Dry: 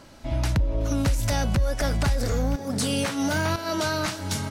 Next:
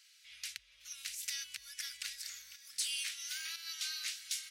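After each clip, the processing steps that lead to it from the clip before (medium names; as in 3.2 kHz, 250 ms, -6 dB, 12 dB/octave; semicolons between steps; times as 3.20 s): inverse Chebyshev high-pass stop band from 840 Hz, stop band 50 dB; trim -6 dB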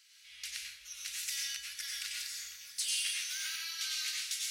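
plate-style reverb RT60 0.63 s, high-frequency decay 0.9×, pre-delay 80 ms, DRR -2.5 dB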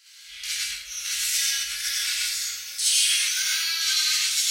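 gated-style reverb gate 90 ms rising, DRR -7.5 dB; trim +5 dB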